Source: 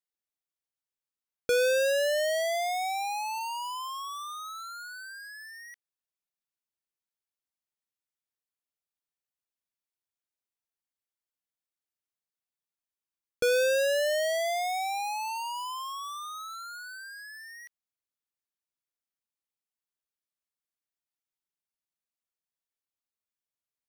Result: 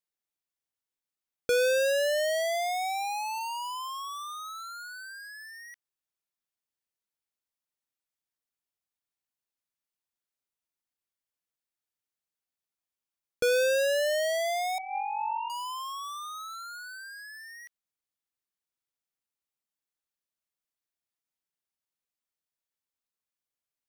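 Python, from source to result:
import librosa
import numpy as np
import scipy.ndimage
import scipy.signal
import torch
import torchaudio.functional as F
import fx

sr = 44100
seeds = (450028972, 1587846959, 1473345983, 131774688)

y = fx.sine_speech(x, sr, at=(14.78, 15.5))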